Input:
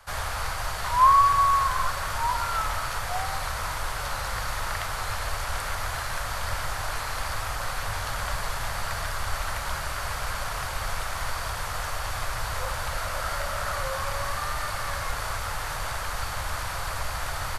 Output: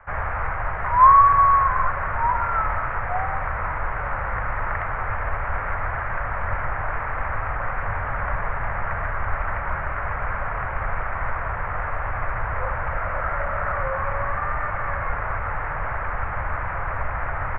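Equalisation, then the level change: steep low-pass 2200 Hz 48 dB/oct; +5.0 dB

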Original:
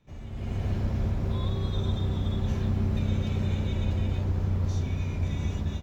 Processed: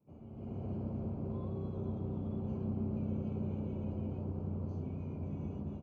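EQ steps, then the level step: running mean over 24 samples; Bessel high-pass 280 Hz, order 2; low shelf 360 Hz +11.5 dB; -8.0 dB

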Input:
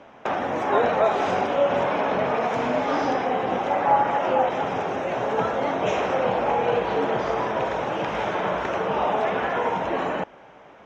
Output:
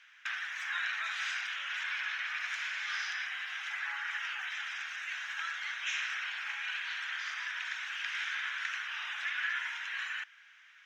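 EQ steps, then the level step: elliptic high-pass 1600 Hz, stop band 80 dB; 0.0 dB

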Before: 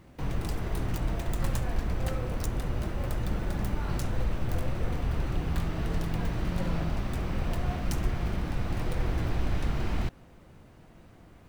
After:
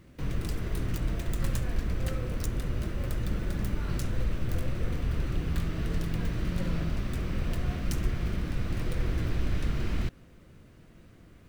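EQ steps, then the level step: bell 820 Hz -10 dB 0.73 oct; 0.0 dB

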